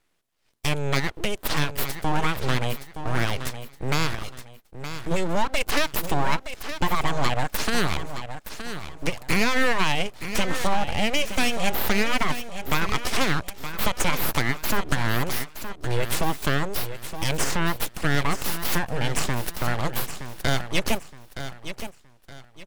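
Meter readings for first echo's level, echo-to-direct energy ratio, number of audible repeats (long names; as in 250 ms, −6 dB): −10.5 dB, −10.0 dB, 3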